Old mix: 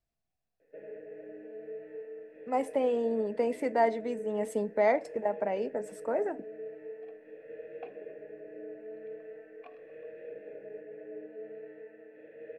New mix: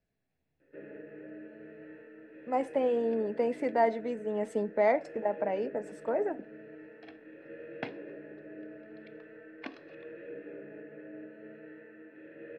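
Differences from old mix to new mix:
speech: add air absorption 70 m; first sound: send +10.0 dB; second sound: remove vowel filter a

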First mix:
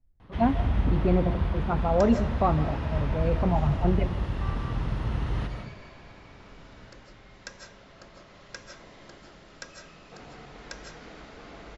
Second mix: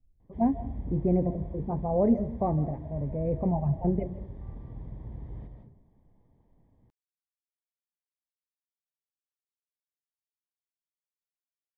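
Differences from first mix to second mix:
first sound -11.5 dB; second sound: muted; master: add running mean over 32 samples

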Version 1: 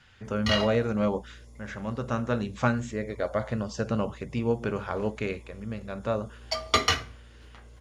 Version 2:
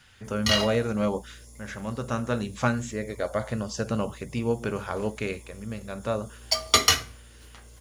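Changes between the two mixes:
background: add high shelf 6800 Hz +10 dB; master: add high shelf 5700 Hz +11 dB

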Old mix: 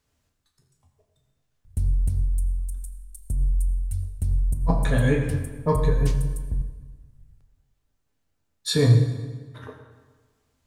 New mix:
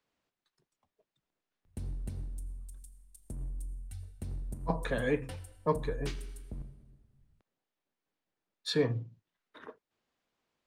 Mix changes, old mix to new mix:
speech: send off; master: add three-band isolator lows -17 dB, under 200 Hz, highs -13 dB, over 4800 Hz

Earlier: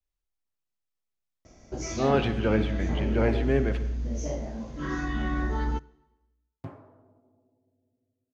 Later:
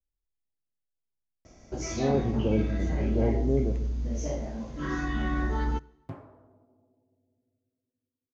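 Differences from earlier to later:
speech: add Gaussian blur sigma 12 samples; second sound: entry -0.55 s

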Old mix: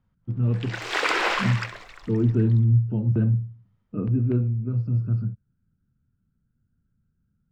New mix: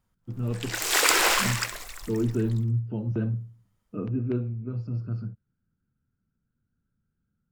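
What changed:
background: remove three-band isolator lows -15 dB, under 240 Hz, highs -19 dB, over 6000 Hz; master: add tone controls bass -8 dB, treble +9 dB

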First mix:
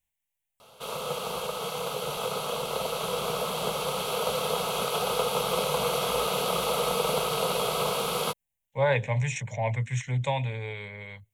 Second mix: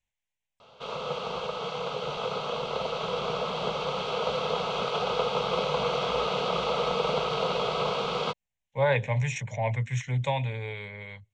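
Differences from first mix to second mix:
background: add LPF 4300 Hz 12 dB/oct; master: add LPF 6900 Hz 24 dB/oct

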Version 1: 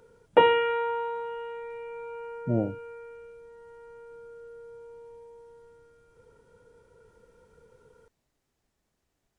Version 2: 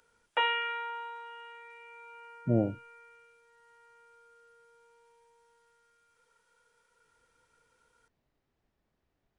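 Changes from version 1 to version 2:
speech: add air absorption 190 m; background: add HPF 1400 Hz 12 dB/oct

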